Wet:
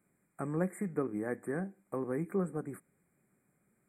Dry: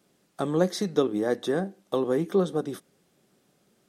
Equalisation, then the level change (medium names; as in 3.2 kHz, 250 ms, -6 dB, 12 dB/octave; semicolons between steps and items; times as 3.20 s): brick-wall FIR band-stop 2.5–7.1 kHz; peaking EQ 550 Hz -10 dB 2.6 oct; treble shelf 6.9 kHz -7.5 dB; -2.0 dB